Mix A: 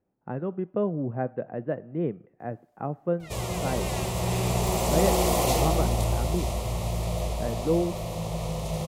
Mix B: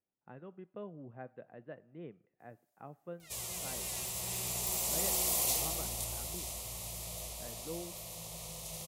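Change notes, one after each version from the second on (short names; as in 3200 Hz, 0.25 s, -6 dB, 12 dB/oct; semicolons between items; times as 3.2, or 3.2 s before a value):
master: add pre-emphasis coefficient 0.9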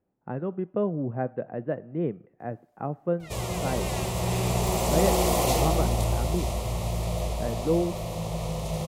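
master: remove pre-emphasis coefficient 0.9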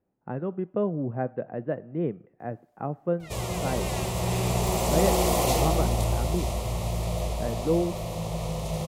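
none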